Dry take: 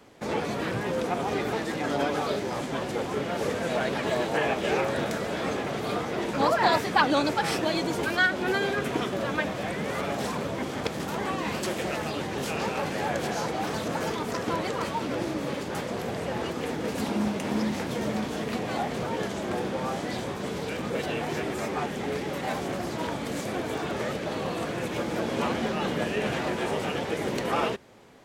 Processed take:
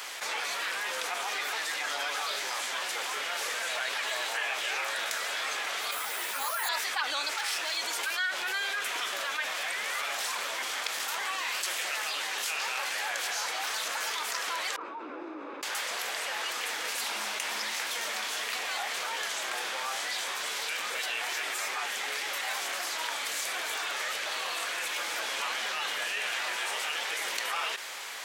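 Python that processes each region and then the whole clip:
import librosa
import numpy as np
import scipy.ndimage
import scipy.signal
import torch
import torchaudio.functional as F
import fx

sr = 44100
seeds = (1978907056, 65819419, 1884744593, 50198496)

y = fx.chain(x, sr, fx.resample_bad(factor=4, down='none', up='hold'),
    fx.ensemble(), at=(5.91, 6.69))
y = fx.chain(y, sr, fx.lowpass(hz=12000.0, slope=12),
    fx.clip_hard(threshold_db=-26.5), at=(7.3, 7.77))
y = fx.chain(y, sr, fx.ladder_bandpass(hz=350.0, resonance_pct=60),
    fx.comb(ms=0.8, depth=0.42), at=(14.76, 15.63))
y = scipy.signal.sosfilt(scipy.signal.butter(2, 1300.0, 'highpass', fs=sr, output='sos'), y)
y = fx.tilt_eq(y, sr, slope=1.5)
y = fx.env_flatten(y, sr, amount_pct=70)
y = F.gain(torch.from_numpy(y), -8.0).numpy()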